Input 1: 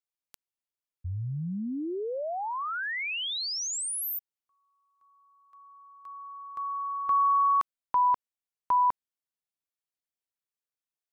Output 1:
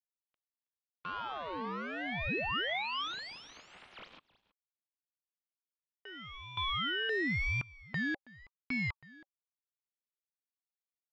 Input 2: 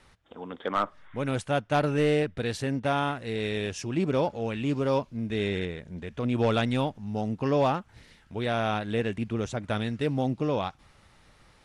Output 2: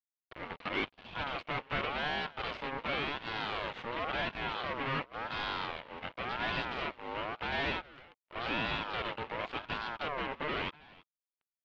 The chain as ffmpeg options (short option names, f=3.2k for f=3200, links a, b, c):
-filter_complex "[0:a]asplit=2[a][b];[b]aeval=exprs='0.0473*(abs(mod(val(0)/0.0473+3,4)-2)-1)':c=same,volume=-5dB[c];[a][c]amix=inputs=2:normalize=0,acrusher=bits=6:mix=0:aa=0.000001,aeval=exprs='0.178*(cos(1*acos(clip(val(0)/0.178,-1,1)))-cos(1*PI/2))+0.00447*(cos(7*acos(clip(val(0)/0.178,-1,1)))-cos(7*PI/2))+0.0708*(cos(8*acos(clip(val(0)/0.178,-1,1)))-cos(8*PI/2))':c=same,highpass=110,equalizer=f=120:t=q:w=4:g=-7,equalizer=f=330:t=q:w=4:g=-7,equalizer=f=720:t=q:w=4:g=-4,equalizer=f=1.4k:t=q:w=4:g=6,equalizer=f=2.1k:t=q:w=4:g=6,lowpass=f=3k:w=0.5412,lowpass=f=3k:w=1.3066,aecho=1:1:323:0.0841,aeval=exprs='val(0)*sin(2*PI*960*n/s+960*0.3/0.92*sin(2*PI*0.92*n/s))':c=same,volume=-8.5dB"